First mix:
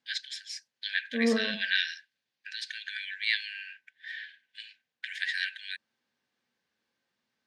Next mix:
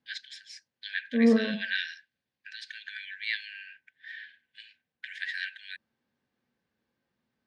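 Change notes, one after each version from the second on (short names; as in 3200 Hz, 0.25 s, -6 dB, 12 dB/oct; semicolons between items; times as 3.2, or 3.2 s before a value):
master: add tilt -3 dB/oct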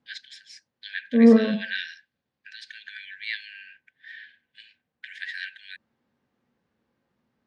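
second voice +7.0 dB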